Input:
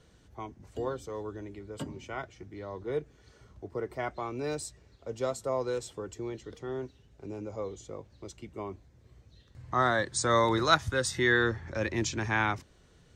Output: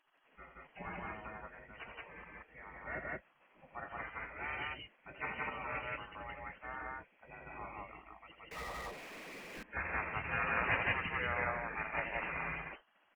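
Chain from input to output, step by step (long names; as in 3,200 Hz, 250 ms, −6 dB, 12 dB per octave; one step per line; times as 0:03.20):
hearing-aid frequency compression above 1,800 Hz 4 to 1
noise reduction from a noise print of the clip's start 7 dB
gate on every frequency bin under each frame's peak −20 dB weak
loudspeakers that aren't time-aligned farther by 29 metres −8 dB, 60 metres 0 dB
0:08.51–0:09.63: power curve on the samples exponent 0.35
level +6 dB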